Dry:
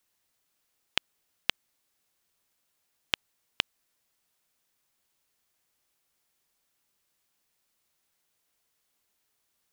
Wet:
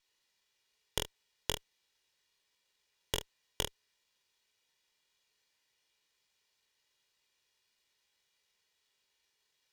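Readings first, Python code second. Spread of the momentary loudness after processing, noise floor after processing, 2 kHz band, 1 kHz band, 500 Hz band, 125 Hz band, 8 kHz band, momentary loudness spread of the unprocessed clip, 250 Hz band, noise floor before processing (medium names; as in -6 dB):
4 LU, -80 dBFS, -11.0 dB, -3.0 dB, +6.0 dB, +7.5 dB, +5.5 dB, 0 LU, +0.5 dB, -77 dBFS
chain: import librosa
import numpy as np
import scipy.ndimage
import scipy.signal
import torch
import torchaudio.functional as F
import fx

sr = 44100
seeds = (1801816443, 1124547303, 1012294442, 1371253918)

p1 = fx.tracing_dist(x, sr, depth_ms=0.31)
p2 = scipy.signal.sosfilt(scipy.signal.butter(2, 3900.0, 'lowpass', fs=sr, output='sos'), p1)
p3 = np.diff(p2, prepend=0.0)
p4 = fx.notch(p3, sr, hz=1400.0, q=5.1)
p5 = p4 + 0.83 * np.pad(p4, (int(2.1 * sr / 1000.0), 0))[:len(p4)]
p6 = fx.small_body(p5, sr, hz=(410.0, 1700.0), ring_ms=45, db=9)
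p7 = p6 + fx.room_early_taps(p6, sr, ms=(21, 45, 73), db=(-6.0, -4.0, -16.5), dry=0)
p8 = fx.running_max(p7, sr, window=3)
y = F.gain(torch.from_numpy(p8), 8.5).numpy()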